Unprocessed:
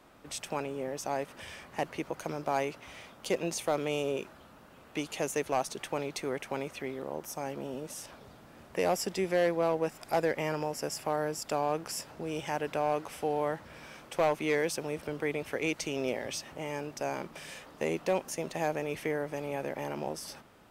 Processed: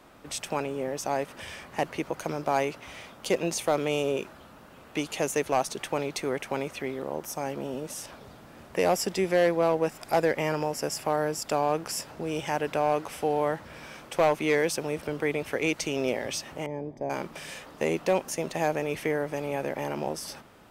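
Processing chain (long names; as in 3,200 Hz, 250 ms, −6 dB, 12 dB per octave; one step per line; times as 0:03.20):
0:16.66–0:17.10: moving average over 32 samples
level +4.5 dB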